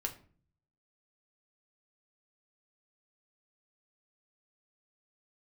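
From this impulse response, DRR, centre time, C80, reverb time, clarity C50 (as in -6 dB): 2.5 dB, 10 ms, 18.0 dB, 0.45 s, 13.5 dB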